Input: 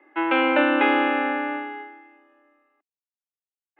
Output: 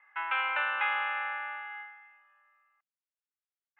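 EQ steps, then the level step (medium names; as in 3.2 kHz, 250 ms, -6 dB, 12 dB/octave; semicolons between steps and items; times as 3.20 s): high-pass 1.1 kHz 24 dB/octave; low-pass 2.4 kHz 12 dB/octave; dynamic bell 1.8 kHz, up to -5 dB, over -38 dBFS, Q 0.76; 0.0 dB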